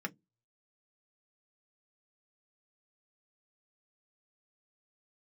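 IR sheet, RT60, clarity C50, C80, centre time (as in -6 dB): 0.15 s, 30.5 dB, 40.5 dB, 4 ms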